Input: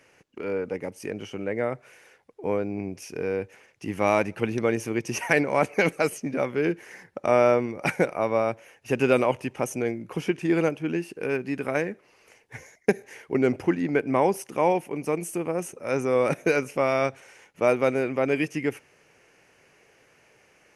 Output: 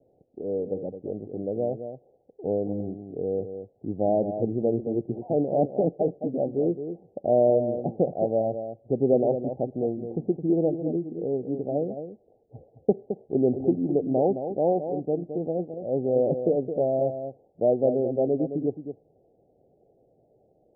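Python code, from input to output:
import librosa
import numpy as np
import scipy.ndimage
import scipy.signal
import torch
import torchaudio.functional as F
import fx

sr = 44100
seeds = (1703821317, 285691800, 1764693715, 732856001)

y = scipy.signal.sosfilt(scipy.signal.butter(16, 770.0, 'lowpass', fs=sr, output='sos'), x)
y = y + 10.0 ** (-9.0 / 20.0) * np.pad(y, (int(216 * sr / 1000.0), 0))[:len(y)]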